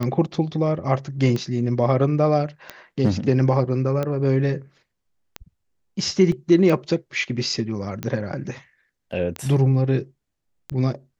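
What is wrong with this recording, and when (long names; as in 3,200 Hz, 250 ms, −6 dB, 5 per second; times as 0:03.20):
scratch tick 45 rpm −13 dBFS
0:06.32: drop-out 2 ms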